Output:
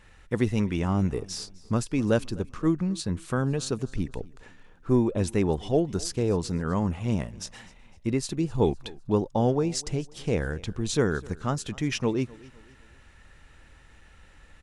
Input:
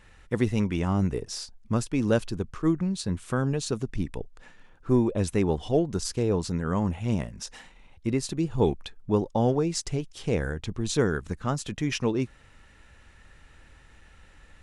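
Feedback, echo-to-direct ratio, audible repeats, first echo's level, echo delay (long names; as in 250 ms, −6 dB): 40%, −22.0 dB, 2, −22.5 dB, 254 ms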